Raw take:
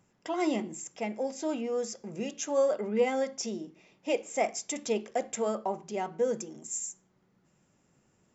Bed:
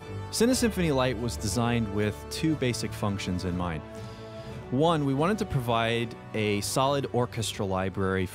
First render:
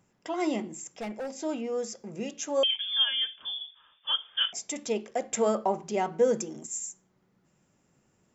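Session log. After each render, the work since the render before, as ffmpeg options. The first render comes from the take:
ffmpeg -i in.wav -filter_complex "[0:a]asettb=1/sr,asplit=3[link_01][link_02][link_03];[link_01]atrim=end=0.644[link_04];[link_02]atrim=start=0.64:end=1.31,asetpts=PTS-STARTPTS,afade=type=in:duration=0.004:curve=qsin,afade=type=out:start_time=0.666:duration=0.004:curve=qsin,asoftclip=type=hard:threshold=-31.5dB[link_05];[link_03]atrim=start=1.306[link_06];[link_04][link_05]acrossfade=duration=0.004:curve1=hsin:curve2=qsin[link_07];[link_07][link_06]acrossfade=duration=0.004:curve1=qsin:curve2=hsin,asettb=1/sr,asplit=3[link_08][link_09][link_10];[link_08]atrim=end=2.634[link_11];[link_09]atrim=start=2.63:end=4.53,asetpts=PTS-STARTPTS,afade=type=in:duration=0.004:curve=qsin,afade=type=out:start_time=1.896:duration=0.004:curve=qsin,lowpass=frequency=3100:width_type=q:width=0.5098,lowpass=frequency=3100:width_type=q:width=0.6013,lowpass=frequency=3100:width_type=q:width=0.9,lowpass=frequency=3100:width_type=q:width=2.563,afreqshift=-3700[link_12];[link_10]atrim=start=4.526[link_13];[link_11][link_12]acrossfade=duration=0.004:curve1=hsin:curve2=qsin[link_14];[link_14][link_13]acrossfade=duration=0.004:curve1=qsin:curve2=hsin,asplit=3[link_15][link_16][link_17];[link_15]atrim=end=5.322[link_18];[link_16]atrim=start=5.318:end=6.662,asetpts=PTS-STARTPTS,volume=5dB[link_19];[link_17]atrim=start=6.658[link_20];[link_18][link_19]acrossfade=duration=0.004:curve1=hsin:curve2=hsin[link_21];[link_21][link_20]acrossfade=duration=0.004:curve1=hsin:curve2=hsin" out.wav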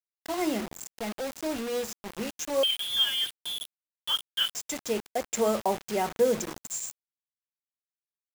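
ffmpeg -i in.wav -af "acrusher=bits=5:mix=0:aa=0.000001" out.wav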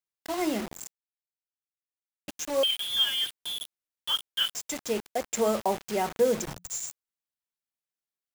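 ffmpeg -i in.wav -filter_complex "[0:a]asettb=1/sr,asplit=3[link_01][link_02][link_03];[link_01]atrim=end=6.474[link_04];[link_02]atrim=start=6.47:end=6.89,asetpts=PTS-STARTPTS,afade=type=in:duration=0.004:curve=qsin,afade=type=out:start_time=0.416:duration=0.004:curve=qsin,afreqshift=-180[link_05];[link_03]atrim=start=6.886[link_06];[link_04][link_05]acrossfade=duration=0.004:curve1=hsin:curve2=qsin[link_07];[link_07][link_06]acrossfade=duration=0.004:curve1=qsin:curve2=hsin,asplit=3[link_08][link_09][link_10];[link_08]atrim=end=0.92,asetpts=PTS-STARTPTS,afade=type=out:start_time=0.916:duration=0.004:curve=hsin[link_11];[link_09]atrim=start=0.92:end=2.28,asetpts=PTS-STARTPTS,volume=0[link_12];[link_10]atrim=start=2.28,asetpts=PTS-STARTPTS,afade=type=in:duration=0.004:curve=hsin[link_13];[link_11][link_12][link_13]concat=n=3:v=0:a=1" out.wav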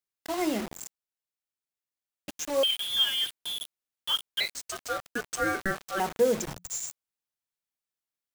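ffmpeg -i in.wav -filter_complex "[0:a]asettb=1/sr,asplit=3[link_01][link_02][link_03];[link_01]atrim=end=4.404[link_04];[link_02]atrim=start=4.4:end=6,asetpts=PTS-STARTPTS,afade=type=in:duration=0.004:curve=qsin,afade=type=out:start_time=1.596:duration=0.004:curve=qsin,aeval=exprs='val(0)*sin(2*PI*960*n/s)':channel_layout=same[link_05];[link_03]atrim=start=5.996[link_06];[link_04][link_05]acrossfade=duration=0.004:curve1=hsin:curve2=qsin[link_07];[link_07][link_06]acrossfade=duration=0.004:curve1=qsin:curve2=hsin" out.wav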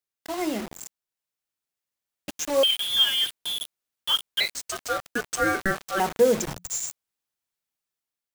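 ffmpeg -i in.wav -af "dynaudnorm=framelen=710:gausssize=3:maxgain=4.5dB" out.wav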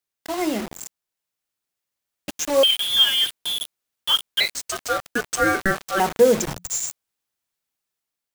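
ffmpeg -i in.wav -af "volume=4dB" out.wav

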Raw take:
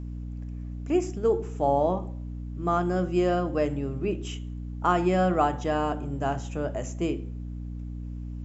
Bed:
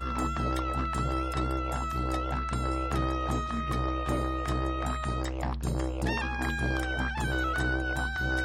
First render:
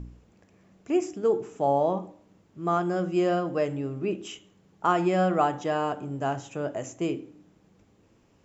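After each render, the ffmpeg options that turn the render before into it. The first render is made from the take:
ffmpeg -i in.wav -af "bandreject=frequency=60:width_type=h:width=4,bandreject=frequency=120:width_type=h:width=4,bandreject=frequency=180:width_type=h:width=4,bandreject=frequency=240:width_type=h:width=4,bandreject=frequency=300:width_type=h:width=4" out.wav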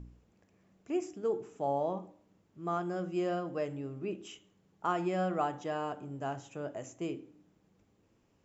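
ffmpeg -i in.wav -af "volume=-8.5dB" out.wav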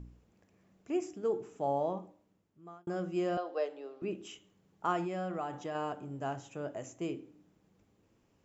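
ffmpeg -i in.wav -filter_complex "[0:a]asettb=1/sr,asplit=3[link_01][link_02][link_03];[link_01]atrim=end=3.374[link_04];[link_02]atrim=start=3.37:end=4.02,asetpts=PTS-STARTPTS,afade=type=in:duration=0.004:curve=qsin,afade=type=out:start_time=0.646:duration=0.004:curve=qsin,highpass=frequency=400:width=0.5412,highpass=frequency=400:width=1.3066,equalizer=frequency=450:width_type=q:width=4:gain=3,equalizer=frequency=740:width_type=q:width=4:gain=5,equalizer=frequency=2200:width_type=q:width=4:gain=-4,equalizer=frequency=4100:width_type=q:width=4:gain=10,lowpass=frequency=5500:width=0.5412,lowpass=frequency=5500:width=1.3066[link_05];[link_03]atrim=start=4.016[link_06];[link_04][link_05]acrossfade=duration=0.004:curve1=hsin:curve2=qsin[link_07];[link_07][link_06]acrossfade=duration=0.004:curve1=qsin:curve2=hsin,asettb=1/sr,asplit=3[link_08][link_09][link_10];[link_08]atrim=end=5.044[link_11];[link_09]atrim=start=5.04:end=5.75,asetpts=PTS-STARTPTS,afade=type=in:duration=0.004:curve=qsin,afade=type=out:start_time=0.706:duration=0.004:curve=qsin,acompressor=threshold=-35dB:ratio=2.5:attack=3.2:release=140:knee=1:detection=peak[link_12];[link_10]atrim=start=5.746[link_13];[link_11][link_12]acrossfade=duration=0.004:curve1=hsin:curve2=qsin[link_14];[link_14][link_13]acrossfade=duration=0.004:curve1=qsin:curve2=hsin,asplit=2[link_15][link_16];[link_15]atrim=end=2.87,asetpts=PTS-STARTPTS,afade=type=out:start_time=1.85:duration=1.02[link_17];[link_16]atrim=start=2.87,asetpts=PTS-STARTPTS,afade=type=in:duration=0.004:curve=hsin[link_18];[link_17][link_18]concat=n=2:v=0:a=1" out.wav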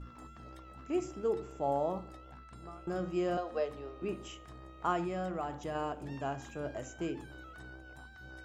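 ffmpeg -i in.wav -i bed.wav -filter_complex "[1:a]volume=-21dB[link_01];[0:a][link_01]amix=inputs=2:normalize=0" out.wav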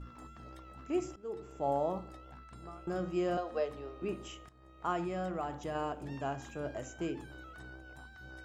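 ffmpeg -i in.wav -filter_complex "[0:a]asplit=3[link_01][link_02][link_03];[link_01]atrim=end=1.16,asetpts=PTS-STARTPTS,afade=type=out:start_time=1.156:duration=0.004:curve=hsin:silence=0.11885[link_04];[link_02]atrim=start=1.16:end=4.49,asetpts=PTS-STARTPTS,afade=type=in:duration=0.51:silence=0.11885,afade=type=out:start_time=3.326:duration=0.004:curve=hsin:silence=0.149624[link_05];[link_03]atrim=start=4.49,asetpts=PTS-STARTPTS,afade=type=in:duration=0.8:curve=qsin:silence=0.149624[link_06];[link_04][link_05][link_06]concat=n=3:v=0:a=1" out.wav

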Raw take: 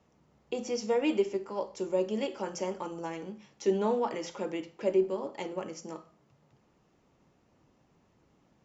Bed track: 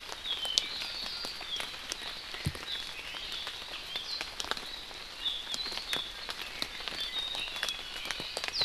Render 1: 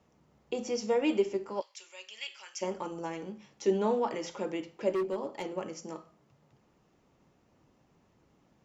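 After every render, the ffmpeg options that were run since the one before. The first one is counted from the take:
ffmpeg -i in.wav -filter_complex "[0:a]asplit=3[link_01][link_02][link_03];[link_01]afade=type=out:start_time=1.6:duration=0.02[link_04];[link_02]highpass=frequency=2400:width_type=q:width=1.6,afade=type=in:start_time=1.6:duration=0.02,afade=type=out:start_time=2.61:duration=0.02[link_05];[link_03]afade=type=in:start_time=2.61:duration=0.02[link_06];[link_04][link_05][link_06]amix=inputs=3:normalize=0,asettb=1/sr,asplit=3[link_07][link_08][link_09];[link_07]atrim=end=4.944[link_10];[link_08]atrim=start=4.94:end=5.55,asetpts=PTS-STARTPTS,afade=type=in:duration=0.004:curve=qsin,afade=type=out:start_time=0.606:duration=0.004:curve=qsin,asoftclip=type=hard:threshold=-27dB[link_11];[link_09]atrim=start=5.546[link_12];[link_10][link_11]acrossfade=duration=0.004:curve1=hsin:curve2=qsin[link_13];[link_13][link_12]acrossfade=duration=0.004:curve1=qsin:curve2=hsin" out.wav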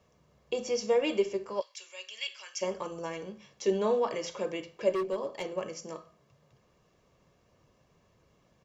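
ffmpeg -i in.wav -af "equalizer=frequency=4300:width_type=o:width=1.9:gain=3,aecho=1:1:1.8:0.48" out.wav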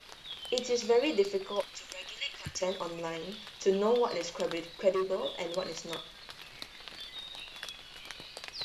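ffmpeg -i in.wav -i bed.wav -filter_complex "[1:a]volume=-8.5dB[link_01];[0:a][link_01]amix=inputs=2:normalize=0" out.wav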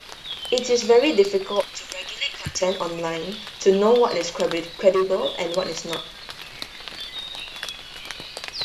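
ffmpeg -i in.wav -af "volume=10.5dB,alimiter=limit=-3dB:level=0:latency=1" out.wav

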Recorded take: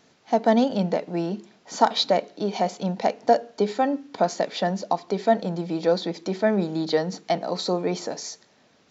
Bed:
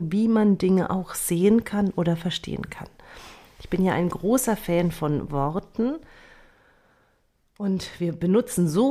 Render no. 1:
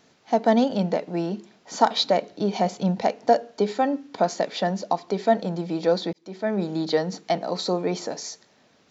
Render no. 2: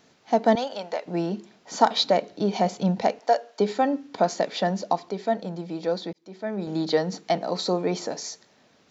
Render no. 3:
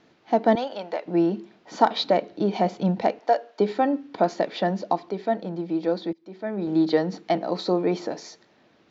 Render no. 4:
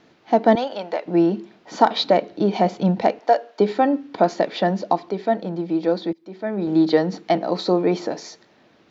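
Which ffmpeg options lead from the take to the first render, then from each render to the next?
ffmpeg -i in.wav -filter_complex "[0:a]asettb=1/sr,asplit=3[link_01][link_02][link_03];[link_01]atrim=end=2.214[link_04];[link_02]atrim=start=2.21:end=3.04,asetpts=PTS-STARTPTS,afade=type=in:duration=0.004:curve=qsin,afade=type=out:start_time=0.826:duration=0.004:curve=qsin,equalizer=frequency=88:width=0.74:gain=10[link_05];[link_03]atrim=start=3.036[link_06];[link_04][link_05]acrossfade=duration=0.004:curve1=hsin:curve2=qsin[link_07];[link_07][link_06]acrossfade=duration=0.004:curve1=qsin:curve2=hsin,asplit=2[link_08][link_09];[link_08]atrim=end=6.13,asetpts=PTS-STARTPTS,afade=type=out:start_time=6.126:duration=0.004:curve=hsin[link_10];[link_09]atrim=start=6.13,asetpts=PTS-STARTPTS,afade=type=in:duration=0.58[link_11];[link_10][link_11]concat=n=2:v=0:a=1" out.wav
ffmpeg -i in.wav -filter_complex "[0:a]asettb=1/sr,asplit=3[link_01][link_02][link_03];[link_01]atrim=end=0.554[link_04];[link_02]atrim=start=0.55:end=1.06,asetpts=PTS-STARTPTS,afade=type=in:duration=0.004:curve=qsin,afade=type=out:start_time=0.506:duration=0.004:curve=qsin,highpass=670[link_05];[link_03]atrim=start=1.056[link_06];[link_04][link_05]acrossfade=duration=0.004:curve1=hsin:curve2=qsin[link_07];[link_07][link_06]acrossfade=duration=0.004:curve1=qsin:curve2=hsin,asettb=1/sr,asplit=3[link_08][link_09][link_10];[link_08]atrim=end=3.194[link_11];[link_09]atrim=start=3.19:end=3.6,asetpts=PTS-STARTPTS,afade=type=in:duration=0.004:curve=qsin,afade=type=out:start_time=0.406:duration=0.004:curve=qsin,highpass=580[link_12];[link_10]atrim=start=3.596[link_13];[link_11][link_12]acrossfade=duration=0.004:curve1=hsin:curve2=qsin[link_14];[link_14][link_13]acrossfade=duration=0.004:curve1=qsin:curve2=hsin,asplit=3[link_15][link_16][link_17];[link_15]atrim=end=5.092[link_18];[link_16]atrim=start=5.088:end=6.672,asetpts=PTS-STARTPTS,volume=-5dB[link_19];[link_17]atrim=start=6.668[link_20];[link_18][link_19]acrossfade=duration=0.004:curve1=hsin:curve2=hsin[link_21];[link_21][link_20]acrossfade=duration=0.004:curve1=hsin:curve2=hsin" out.wav
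ffmpeg -i in.wav -af "lowpass=3700,equalizer=frequency=330:width_type=o:width=0.21:gain=8.5" out.wav
ffmpeg -i in.wav -af "volume=4dB,alimiter=limit=-2dB:level=0:latency=1" out.wav

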